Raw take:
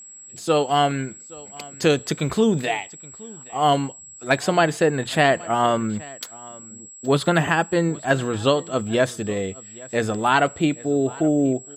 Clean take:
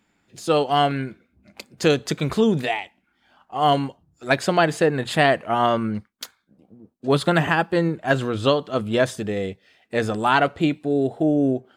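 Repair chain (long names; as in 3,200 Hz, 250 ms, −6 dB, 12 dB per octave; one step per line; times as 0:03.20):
notch filter 7,700 Hz, Q 30
echo removal 822 ms −22 dB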